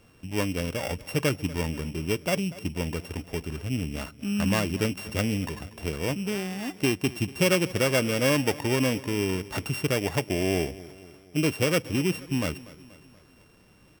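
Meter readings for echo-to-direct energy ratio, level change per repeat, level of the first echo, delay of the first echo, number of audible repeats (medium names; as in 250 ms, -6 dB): -17.5 dB, -5.5 dB, -19.0 dB, 240 ms, 3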